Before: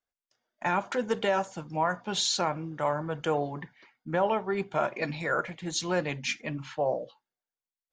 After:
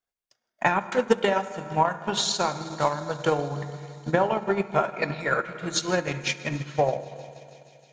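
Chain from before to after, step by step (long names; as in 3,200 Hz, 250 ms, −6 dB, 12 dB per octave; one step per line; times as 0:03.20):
feedback echo with a high-pass in the loop 159 ms, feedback 85%, high-pass 870 Hz, level −16.5 dB
on a send at −5 dB: convolution reverb RT60 2.4 s, pre-delay 3 ms
on the sum: transient designer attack +10 dB, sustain −6 dB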